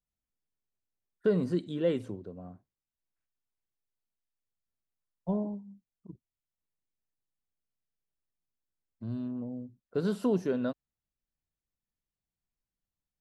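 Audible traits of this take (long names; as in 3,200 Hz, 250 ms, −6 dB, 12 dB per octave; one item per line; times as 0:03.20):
background noise floor −94 dBFS
spectral slope −7.5 dB per octave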